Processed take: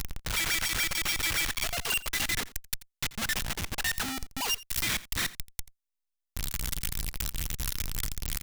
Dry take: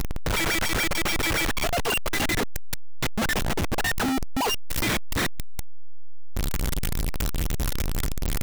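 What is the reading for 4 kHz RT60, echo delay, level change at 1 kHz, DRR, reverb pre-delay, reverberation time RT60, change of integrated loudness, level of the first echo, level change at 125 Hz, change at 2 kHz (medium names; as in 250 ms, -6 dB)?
no reverb, 85 ms, -9.5 dB, no reverb, no reverb, no reverb, -4.0 dB, -19.0 dB, -9.0 dB, -4.0 dB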